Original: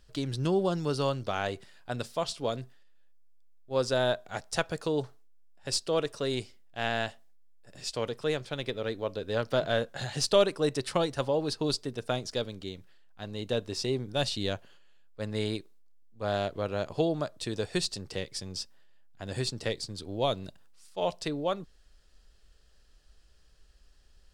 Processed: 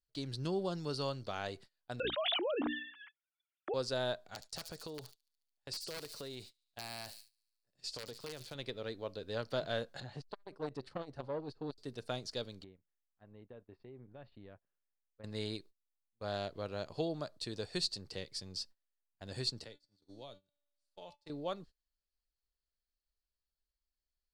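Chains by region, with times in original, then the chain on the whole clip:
2.00–3.74 s: formants replaced by sine waves + hum notches 60/120/180/240/300 Hz + level flattener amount 100%
4.24–8.55 s: integer overflow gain 19.5 dB + feedback echo behind a high-pass 72 ms, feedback 72%, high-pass 5.3 kHz, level -8 dB + compression 12:1, threshold -32 dBFS
10.00–11.78 s: low-pass 1 kHz 6 dB/octave + transformer saturation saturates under 920 Hz
12.64–15.24 s: low-pass 2.1 kHz 24 dB/octave + band-stop 1.5 kHz, Q 28 + compression 4:1, threshold -42 dBFS
19.64–21.30 s: feedback comb 290 Hz, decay 1 s, mix 80% + three bands compressed up and down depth 70%
whole clip: gate -45 dBFS, range -24 dB; peaking EQ 4.4 kHz +10 dB 0.3 oct; trim -9 dB

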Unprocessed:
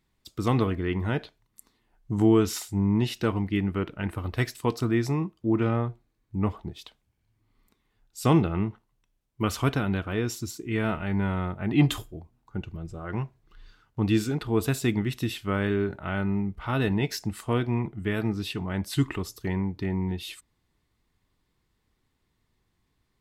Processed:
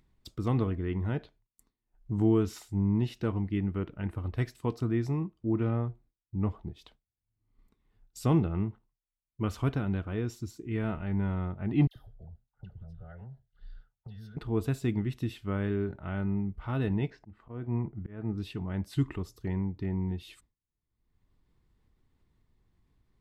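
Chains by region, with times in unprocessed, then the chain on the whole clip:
11.87–14.37 s: static phaser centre 1.6 kHz, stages 8 + compression, threshold -44 dBFS + phase dispersion lows, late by 87 ms, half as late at 1.2 kHz
17.10–18.38 s: low-pass 1.8 kHz + slow attack 273 ms
whole clip: expander -48 dBFS; tilt EQ -2 dB/octave; upward compressor, threshold -30 dBFS; trim -8.5 dB

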